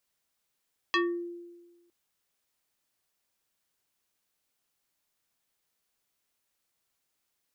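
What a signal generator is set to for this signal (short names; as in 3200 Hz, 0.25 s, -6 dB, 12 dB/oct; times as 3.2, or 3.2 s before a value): FM tone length 0.96 s, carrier 346 Hz, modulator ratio 4.28, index 2.5, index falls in 0.35 s exponential, decay 1.31 s, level -21 dB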